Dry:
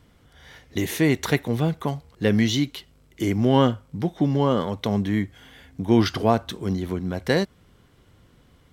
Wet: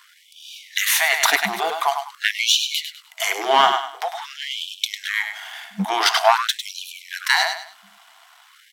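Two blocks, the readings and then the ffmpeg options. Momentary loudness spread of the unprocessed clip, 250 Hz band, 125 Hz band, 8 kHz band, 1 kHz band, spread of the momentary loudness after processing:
10 LU, -14.5 dB, under -15 dB, +13.0 dB, +9.5 dB, 16 LU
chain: -filter_complex "[0:a]aeval=exprs='if(lt(val(0),0),0.447*val(0),val(0))':c=same,highpass=f=79:w=0.5412,highpass=f=79:w=1.3066,equalizer=f=120:t=o:w=1.7:g=6.5,aecho=1:1:101|202|303:0.355|0.106|0.0319,asplit=2[a][b];[b]alimiter=limit=-15dB:level=0:latency=1:release=20,volume=0dB[c];[a][c]amix=inputs=2:normalize=0,afftfilt=real='re*(1-between(b*sr/4096,210,640))':imag='im*(1-between(b*sr/4096,210,640))':win_size=4096:overlap=0.75,aeval=exprs='0.841*sin(PI/2*2*val(0)/0.841)':c=same,afftfilt=real='re*gte(b*sr/1024,210*pow(2400/210,0.5+0.5*sin(2*PI*0.47*pts/sr)))':imag='im*gte(b*sr/1024,210*pow(2400/210,0.5+0.5*sin(2*PI*0.47*pts/sr)))':win_size=1024:overlap=0.75"

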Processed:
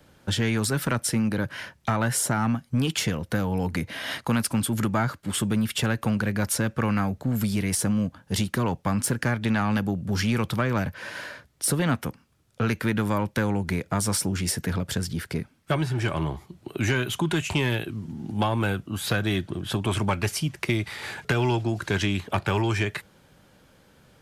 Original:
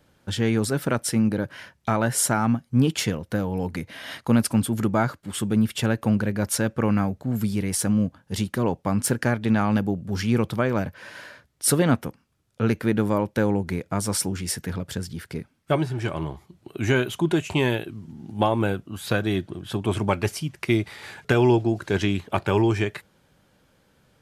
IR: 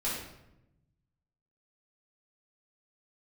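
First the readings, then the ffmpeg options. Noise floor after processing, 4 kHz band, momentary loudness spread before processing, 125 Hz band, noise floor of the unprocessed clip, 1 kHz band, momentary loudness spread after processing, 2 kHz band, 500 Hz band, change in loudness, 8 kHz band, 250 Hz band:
-59 dBFS, +2.0 dB, 11 LU, -0.5 dB, -64 dBFS, -1.0 dB, 6 LU, +1.0 dB, -5.0 dB, -2.0 dB, -0.5 dB, -3.0 dB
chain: -filter_complex "[0:a]acrossover=split=220|880[a][b][c];[a]acompressor=threshold=-29dB:ratio=4[d];[b]acompressor=threshold=-35dB:ratio=4[e];[c]acompressor=threshold=-29dB:ratio=4[f];[d][e][f]amix=inputs=3:normalize=0,asoftclip=type=tanh:threshold=-18.5dB,volume=5dB"

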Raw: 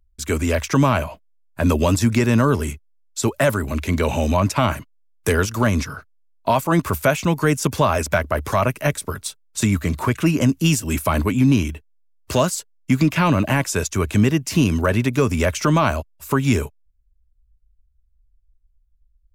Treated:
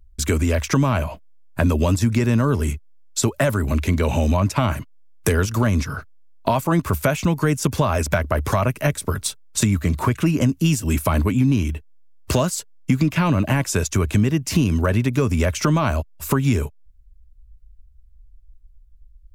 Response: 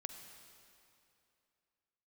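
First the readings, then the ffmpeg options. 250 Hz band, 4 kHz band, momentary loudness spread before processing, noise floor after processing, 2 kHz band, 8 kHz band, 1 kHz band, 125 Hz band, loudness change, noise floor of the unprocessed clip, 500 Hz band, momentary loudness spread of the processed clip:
-1.0 dB, -1.5 dB, 10 LU, -50 dBFS, -2.5 dB, 0.0 dB, -3.0 dB, +1.0 dB, -1.0 dB, -61 dBFS, -2.0 dB, 6 LU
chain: -af "lowshelf=f=220:g=6.5,acompressor=threshold=-26dB:ratio=2.5,volume=6dB"

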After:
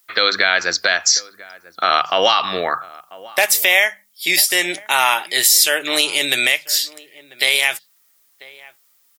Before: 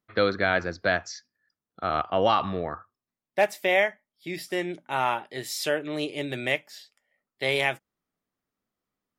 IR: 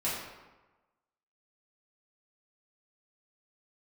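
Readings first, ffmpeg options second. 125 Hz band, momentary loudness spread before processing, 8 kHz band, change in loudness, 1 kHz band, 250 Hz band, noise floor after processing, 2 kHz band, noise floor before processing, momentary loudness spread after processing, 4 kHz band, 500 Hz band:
-7.0 dB, 14 LU, +24.5 dB, +11.5 dB, +7.5 dB, +0.5 dB, -58 dBFS, +11.5 dB, under -85 dBFS, 9 LU, +18.0 dB, +3.0 dB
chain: -filter_complex "[0:a]aderivative,bandreject=f=50:t=h:w=6,bandreject=f=100:t=h:w=6,bandreject=f=150:t=h:w=6,bandreject=f=200:t=h:w=6,acompressor=threshold=-41dB:ratio=6,asplit=2[a][b];[b]adelay=991.3,volume=-21dB,highshelf=f=4k:g=-22.3[c];[a][c]amix=inputs=2:normalize=0,alimiter=level_in=32.5dB:limit=-1dB:release=50:level=0:latency=1,volume=-1dB"

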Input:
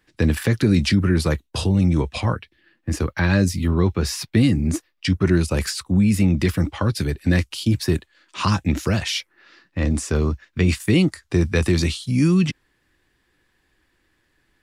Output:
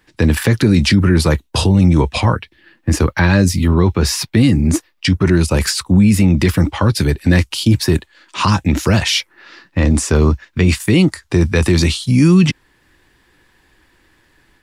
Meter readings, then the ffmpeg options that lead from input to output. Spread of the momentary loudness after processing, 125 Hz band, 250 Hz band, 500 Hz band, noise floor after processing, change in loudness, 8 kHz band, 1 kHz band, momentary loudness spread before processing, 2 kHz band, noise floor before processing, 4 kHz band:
6 LU, +6.5 dB, +6.0 dB, +6.0 dB, -59 dBFS, +6.5 dB, +8.5 dB, +8.0 dB, 7 LU, +6.5 dB, -68 dBFS, +8.0 dB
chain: -filter_complex "[0:a]equalizer=f=920:w=5.1:g=4.5,asplit=2[a][b];[b]alimiter=limit=-14dB:level=0:latency=1:release=28,volume=3dB[c];[a][c]amix=inputs=2:normalize=0,dynaudnorm=f=150:g=3:m=3.5dB"

